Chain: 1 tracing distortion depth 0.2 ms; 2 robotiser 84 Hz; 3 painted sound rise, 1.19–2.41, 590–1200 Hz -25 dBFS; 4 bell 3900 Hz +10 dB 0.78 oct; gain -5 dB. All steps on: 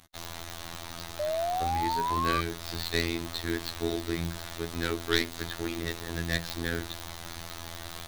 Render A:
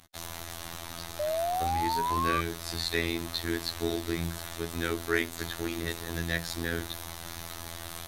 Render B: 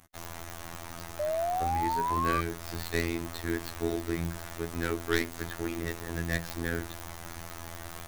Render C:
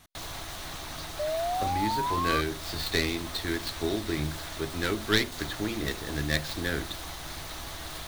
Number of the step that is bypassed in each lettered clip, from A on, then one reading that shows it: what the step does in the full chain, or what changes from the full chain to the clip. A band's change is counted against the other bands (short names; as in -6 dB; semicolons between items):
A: 1, crest factor change -4.5 dB; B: 4, 4 kHz band -8.0 dB; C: 2, 1 kHz band -2.0 dB